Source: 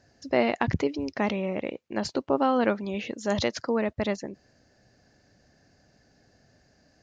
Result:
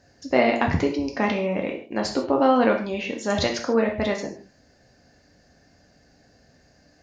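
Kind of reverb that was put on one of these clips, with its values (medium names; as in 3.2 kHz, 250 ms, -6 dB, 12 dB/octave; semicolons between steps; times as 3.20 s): gated-style reverb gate 180 ms falling, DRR 1 dB; trim +2.5 dB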